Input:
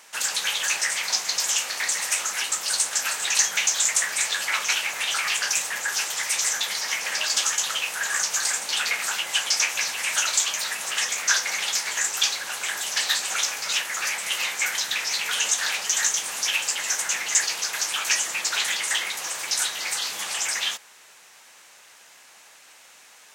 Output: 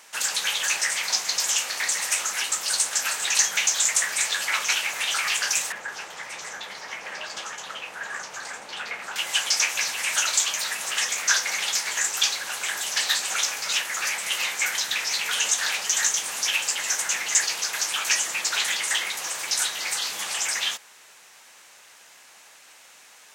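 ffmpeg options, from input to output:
ffmpeg -i in.wav -filter_complex "[0:a]asettb=1/sr,asplit=3[link_01][link_02][link_03];[link_01]atrim=end=5.724[link_04];[link_02]atrim=start=5.72:end=9.16,asetpts=PTS-STARTPTS,afade=type=in:duration=0.004:curve=qsin,afade=type=out:start_time=3.436:duration=0.004:curve=qsin,lowpass=frequency=1000:poles=1[link_05];[link_03]atrim=start=9.156[link_06];[link_04][link_05]acrossfade=duration=0.004:curve1=hsin:curve2=qsin[link_07];[link_07][link_06]acrossfade=duration=0.004:curve1=qsin:curve2=hsin" out.wav

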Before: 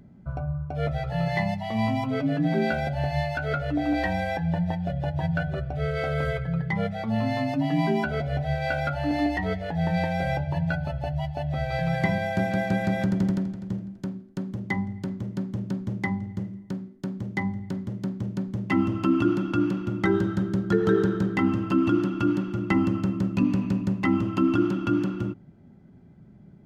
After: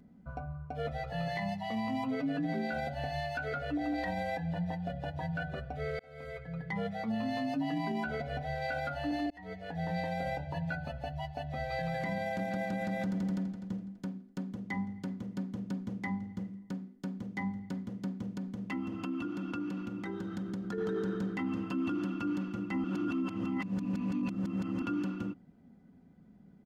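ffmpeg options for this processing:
ffmpeg -i in.wav -filter_complex "[0:a]asettb=1/sr,asplit=3[link_01][link_02][link_03];[link_01]atrim=end=18.294[link_04];[link_02]atrim=start=18.29:end=20.78,asetpts=PTS-STARTPTS,afade=type=in:duration=0.004:curve=qsin,afade=type=out:start_time=2.486:duration=0.004:curve=qsin,acompressor=threshold=-26dB:ratio=6:attack=3.2:release=140:knee=1:detection=peak[link_05];[link_03]atrim=start=20.776[link_06];[link_04][link_05]acrossfade=duration=0.004:curve1=hsin:curve2=qsin[link_07];[link_07][link_06]acrossfade=duration=0.004:curve1=qsin:curve2=hsin,asplit=5[link_08][link_09][link_10][link_11][link_12];[link_08]atrim=end=5.99,asetpts=PTS-STARTPTS,afade=type=out:start_time=5.986:duration=0.004:curve=hsin[link_13];[link_09]atrim=start=5.99:end=9.3,asetpts=PTS-STARTPTS,afade=type=in:duration=0.82,afade=type=out:start_time=3.306:duration=0.004:curve=hsin[link_14];[link_10]atrim=start=9.3:end=22.842,asetpts=PTS-STARTPTS,afade=type=in:duration=0.58[link_15];[link_11]atrim=start=22.838:end=24.822,asetpts=PTS-STARTPTS,areverse[link_16];[link_12]atrim=start=24.818[link_17];[link_13][link_14][link_15]concat=n=3:v=0:a=1[link_18];[link_18][link_16]acrossfade=duration=0.004:curve1=hsin:curve2=hsin[link_19];[link_19][link_17]acrossfade=duration=0.004:curve1=hsin:curve2=hsin,lowshelf=frequency=110:gain=-6,aecho=1:1:4.1:0.53,alimiter=limit=-20dB:level=0:latency=1:release=27,volume=-6.5dB" out.wav

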